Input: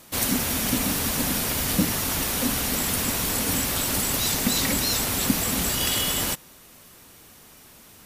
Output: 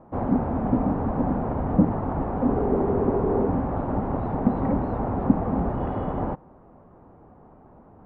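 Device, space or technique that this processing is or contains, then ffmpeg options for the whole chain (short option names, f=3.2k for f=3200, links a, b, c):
under water: -filter_complex "[0:a]lowpass=f=1k:w=0.5412,lowpass=f=1k:w=1.3066,equalizer=f=770:t=o:w=0.29:g=4.5,asettb=1/sr,asplit=3[a][b][c];[a]atrim=end=2.494[d];[b]atrim=start=2.49:end=3.47,asetpts=PTS-STARTPTS,afade=t=in:d=0.004:c=qsin,afade=t=out:st=0.976:d=0.004:c=qsin,equalizer=f=400:t=o:w=0.41:g=14.5[e];[c]atrim=start=3.466[f];[d][e]acrossfade=d=0.004:c1=hsin:c2=qsin[g];[g][f]acrossfade=d=0.004:c1=qsin:c2=hsin,volume=4.5dB"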